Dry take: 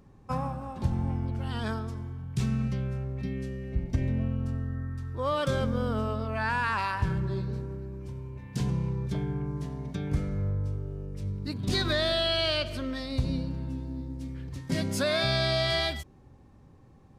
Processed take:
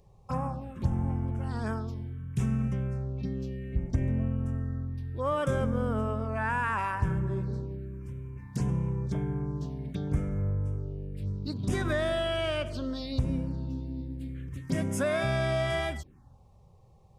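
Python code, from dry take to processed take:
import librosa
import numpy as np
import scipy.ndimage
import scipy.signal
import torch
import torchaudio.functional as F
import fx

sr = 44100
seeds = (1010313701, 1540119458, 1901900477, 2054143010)

y = fx.env_phaser(x, sr, low_hz=230.0, high_hz=4300.0, full_db=-27.0)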